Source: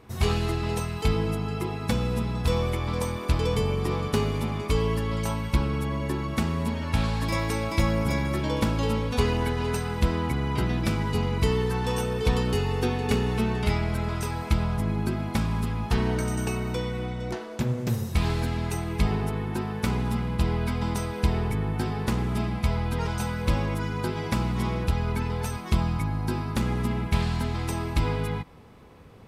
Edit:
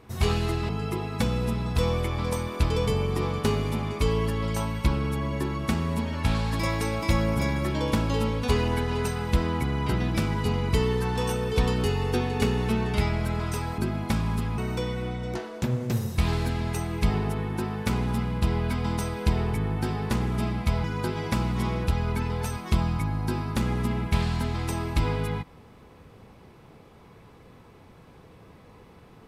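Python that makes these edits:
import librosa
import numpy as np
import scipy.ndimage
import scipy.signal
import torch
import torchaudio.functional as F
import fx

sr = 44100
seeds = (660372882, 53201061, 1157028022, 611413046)

y = fx.edit(x, sr, fx.cut(start_s=0.69, length_s=0.69),
    fx.cut(start_s=14.47, length_s=0.56),
    fx.cut(start_s=15.83, length_s=0.72),
    fx.cut(start_s=22.81, length_s=1.03), tone=tone)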